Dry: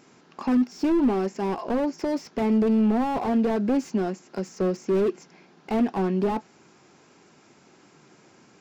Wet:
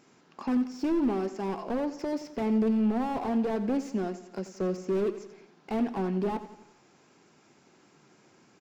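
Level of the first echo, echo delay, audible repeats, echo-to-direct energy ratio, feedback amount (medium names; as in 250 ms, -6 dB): -13.5 dB, 87 ms, 4, -12.0 dB, 52%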